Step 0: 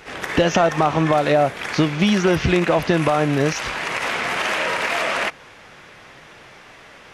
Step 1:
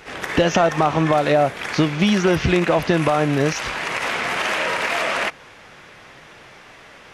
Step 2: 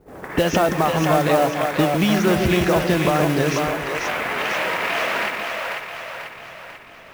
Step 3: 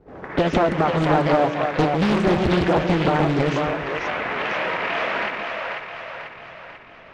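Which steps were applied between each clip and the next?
no processing that can be heard
low-pass that shuts in the quiet parts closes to 390 Hz, open at −15 dBFS; echo with a time of its own for lows and highs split 460 Hz, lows 153 ms, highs 492 ms, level −4 dB; noise that follows the level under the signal 20 dB; level −2 dB
high-frequency loss of the air 200 metres; highs frequency-modulated by the lows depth 0.93 ms

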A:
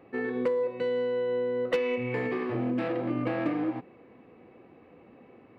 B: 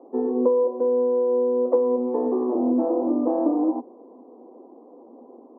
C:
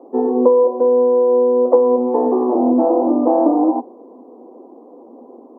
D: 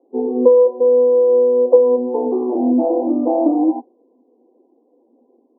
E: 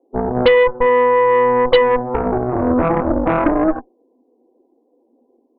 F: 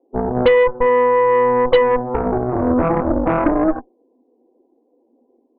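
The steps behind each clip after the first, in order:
Chebyshev band-pass filter 240–1,000 Hz, order 4; level +8.5 dB
dynamic equaliser 800 Hz, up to +7 dB, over −40 dBFS, Q 1.9; level +6 dB
every bin expanded away from the loudest bin 1.5 to 1
harmonic generator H 8 −12 dB, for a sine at −1 dBFS; level −2 dB
high-frequency loss of the air 290 metres

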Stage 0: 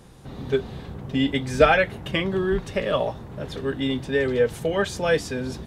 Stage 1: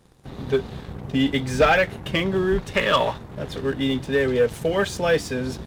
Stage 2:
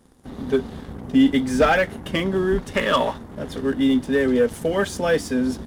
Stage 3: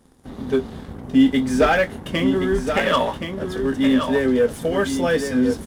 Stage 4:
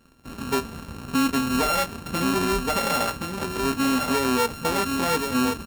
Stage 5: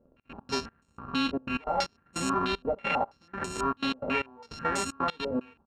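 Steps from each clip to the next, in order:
gain on a spectral selection 0:02.74–0:03.17, 820–4,400 Hz +9 dB; leveller curve on the samples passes 2; level −5.5 dB
thirty-one-band graphic EQ 125 Hz −9 dB, 250 Hz +9 dB, 2,500 Hz −5 dB, 4,000 Hz −4 dB, 10,000 Hz +5 dB
double-tracking delay 23 ms −11 dB; single-tap delay 1,073 ms −7 dB
samples sorted by size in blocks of 32 samples; brickwall limiter −13 dBFS, peak gain reduction 6.5 dB; level −2.5 dB
gate pattern "xx.x.xx...xx" 153 BPM −24 dB; low-pass on a step sequencer 6.1 Hz 570–7,600 Hz; level −7.5 dB

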